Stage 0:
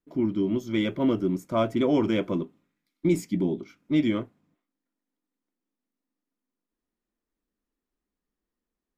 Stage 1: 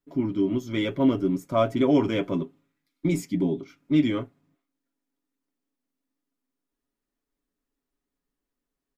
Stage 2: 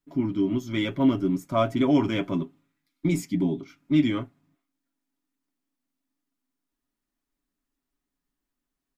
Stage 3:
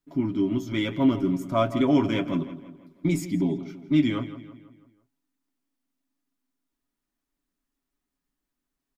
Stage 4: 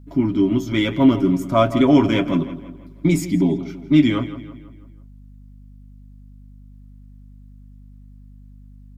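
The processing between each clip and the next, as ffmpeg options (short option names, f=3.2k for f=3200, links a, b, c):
-af "aecho=1:1:7.2:0.57"
-af "equalizer=f=470:t=o:w=0.35:g=-12,volume=1dB"
-filter_complex "[0:a]asplit=2[a][b];[b]adelay=165,lowpass=f=3.9k:p=1,volume=-13.5dB,asplit=2[c][d];[d]adelay=165,lowpass=f=3.9k:p=1,volume=0.5,asplit=2[e][f];[f]adelay=165,lowpass=f=3.9k:p=1,volume=0.5,asplit=2[g][h];[h]adelay=165,lowpass=f=3.9k:p=1,volume=0.5,asplit=2[i][j];[j]adelay=165,lowpass=f=3.9k:p=1,volume=0.5[k];[a][c][e][g][i][k]amix=inputs=6:normalize=0"
-af "aeval=exprs='val(0)+0.00355*(sin(2*PI*50*n/s)+sin(2*PI*2*50*n/s)/2+sin(2*PI*3*50*n/s)/3+sin(2*PI*4*50*n/s)/4+sin(2*PI*5*50*n/s)/5)':c=same,volume=7dB"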